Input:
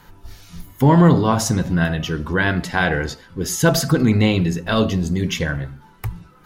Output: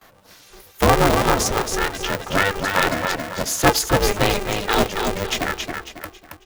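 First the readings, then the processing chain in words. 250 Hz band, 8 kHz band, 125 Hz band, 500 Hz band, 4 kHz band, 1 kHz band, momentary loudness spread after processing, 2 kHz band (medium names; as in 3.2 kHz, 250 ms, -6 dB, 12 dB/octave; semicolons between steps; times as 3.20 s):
-7.5 dB, +2.5 dB, -8.5 dB, +1.0 dB, +3.5 dB, +3.5 dB, 10 LU, +0.5 dB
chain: reverb removal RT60 1.6 s; gate with hold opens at -41 dBFS; Chebyshev high-pass 300 Hz, order 2; on a send: feedback delay 274 ms, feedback 35%, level -5 dB; on the sum: polarity switched at an audio rate 200 Hz; trim +2 dB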